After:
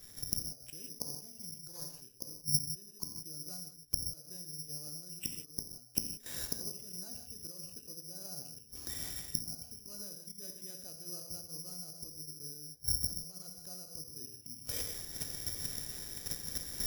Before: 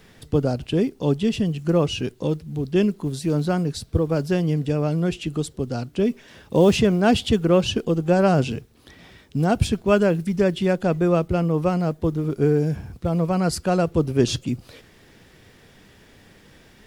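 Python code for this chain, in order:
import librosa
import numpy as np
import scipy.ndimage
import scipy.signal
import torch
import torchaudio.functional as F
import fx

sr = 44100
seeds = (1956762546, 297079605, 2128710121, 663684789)

y = fx.self_delay(x, sr, depth_ms=0.48, at=(1.07, 1.99))
y = fx.gate_flip(y, sr, shuts_db=-23.0, range_db=-37)
y = fx.high_shelf(y, sr, hz=3300.0, db=10.5, at=(10.4, 11.12))
y = fx.level_steps(y, sr, step_db=10)
y = fx.low_shelf(y, sr, hz=91.0, db=8.0)
y = fx.rev_gated(y, sr, seeds[0], gate_ms=200, shape='flat', drr_db=2.5)
y = (np.kron(scipy.signal.resample_poly(y, 1, 8), np.eye(8)[0]) * 8)[:len(y)]
y = fx.rider(y, sr, range_db=5, speed_s=0.5)
y = fx.am_noise(y, sr, seeds[1], hz=5.7, depth_pct=55)
y = F.gain(torch.from_numpy(y), 1.0).numpy()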